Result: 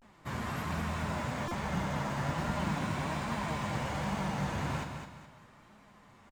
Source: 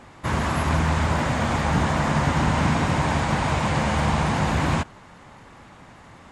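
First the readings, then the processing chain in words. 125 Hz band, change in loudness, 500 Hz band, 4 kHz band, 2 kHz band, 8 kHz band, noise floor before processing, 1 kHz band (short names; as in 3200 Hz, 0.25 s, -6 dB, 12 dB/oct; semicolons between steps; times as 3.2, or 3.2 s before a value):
-13.0 dB, -12.5 dB, -11.5 dB, -12.0 dB, -12.0 dB, -12.0 dB, -47 dBFS, -12.0 dB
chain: in parallel at -5 dB: short-mantissa float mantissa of 2-bit; on the sum: resonator 200 Hz, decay 0.76 s, harmonics odd, mix 80%; flange 1.2 Hz, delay 4.2 ms, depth 4.8 ms, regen +46%; vibrato 0.4 Hz 74 cents; on a send: feedback echo 0.21 s, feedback 35%, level -7 dB; on the sum: stuck buffer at 1.48, samples 128, times 10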